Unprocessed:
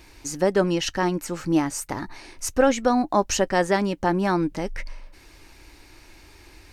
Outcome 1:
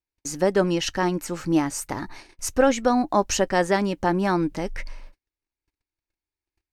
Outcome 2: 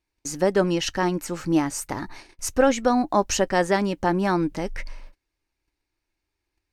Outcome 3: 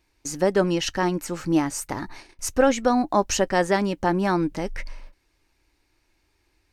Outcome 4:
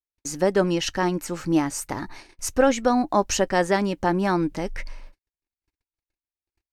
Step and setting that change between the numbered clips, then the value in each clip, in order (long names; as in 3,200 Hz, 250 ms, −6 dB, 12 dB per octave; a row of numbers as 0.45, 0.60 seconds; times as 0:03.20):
noise gate, range: −45, −32, −19, −57 decibels